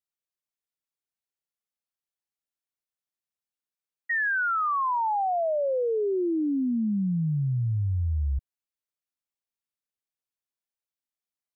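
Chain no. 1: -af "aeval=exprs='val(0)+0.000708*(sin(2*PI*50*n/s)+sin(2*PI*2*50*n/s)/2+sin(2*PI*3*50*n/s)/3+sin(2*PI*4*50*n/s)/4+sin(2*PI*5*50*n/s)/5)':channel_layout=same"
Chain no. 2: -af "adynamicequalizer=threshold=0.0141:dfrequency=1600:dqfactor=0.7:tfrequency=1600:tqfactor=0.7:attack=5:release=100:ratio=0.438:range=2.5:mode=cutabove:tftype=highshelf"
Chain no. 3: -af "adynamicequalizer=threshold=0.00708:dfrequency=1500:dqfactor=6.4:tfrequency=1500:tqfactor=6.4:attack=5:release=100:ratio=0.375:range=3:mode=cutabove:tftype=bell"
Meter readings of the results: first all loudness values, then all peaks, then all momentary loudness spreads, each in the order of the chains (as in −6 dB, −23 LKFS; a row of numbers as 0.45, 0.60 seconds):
−26.5, −27.0, −26.5 LKFS; −22.5, −22.5, −22.5 dBFS; 4, 3, 2 LU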